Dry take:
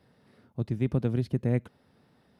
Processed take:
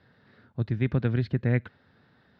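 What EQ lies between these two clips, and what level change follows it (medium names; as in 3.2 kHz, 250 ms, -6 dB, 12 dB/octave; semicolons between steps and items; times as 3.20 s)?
fifteen-band graphic EQ 100 Hz +5 dB, 1.6 kHz +11 dB, 4 kHz +9 dB; dynamic bell 2.2 kHz, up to +5 dB, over -50 dBFS, Q 1.6; distance through air 170 m; 0.0 dB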